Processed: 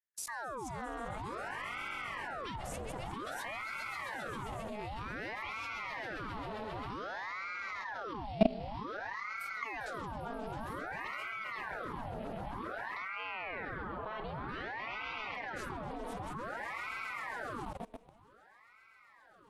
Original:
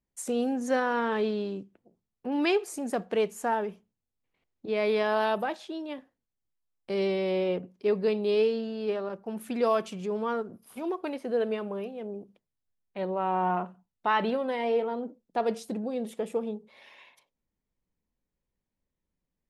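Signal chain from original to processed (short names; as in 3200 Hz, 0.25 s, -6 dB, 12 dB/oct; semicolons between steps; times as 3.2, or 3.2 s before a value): swelling echo 0.133 s, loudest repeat 5, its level -13 dB; level quantiser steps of 21 dB; ring modulator with a swept carrier 1000 Hz, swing 80%, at 0.53 Hz; gain +4 dB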